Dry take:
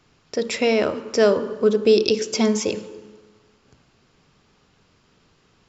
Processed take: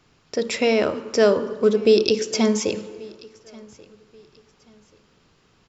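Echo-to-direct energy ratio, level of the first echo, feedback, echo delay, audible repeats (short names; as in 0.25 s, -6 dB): -23.5 dB, -24.0 dB, 30%, 1.134 s, 2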